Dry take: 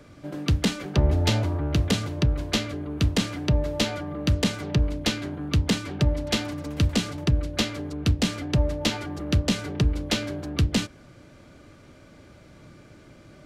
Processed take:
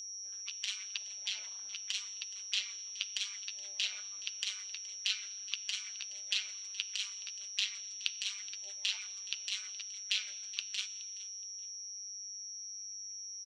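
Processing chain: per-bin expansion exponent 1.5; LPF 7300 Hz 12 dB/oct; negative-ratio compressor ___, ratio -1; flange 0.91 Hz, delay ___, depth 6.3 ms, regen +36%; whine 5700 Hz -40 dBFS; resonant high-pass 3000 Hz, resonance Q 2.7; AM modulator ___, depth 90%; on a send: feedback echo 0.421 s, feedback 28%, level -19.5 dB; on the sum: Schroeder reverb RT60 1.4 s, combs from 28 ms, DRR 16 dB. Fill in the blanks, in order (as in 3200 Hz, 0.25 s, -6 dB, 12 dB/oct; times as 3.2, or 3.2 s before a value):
-27 dBFS, 7.2 ms, 200 Hz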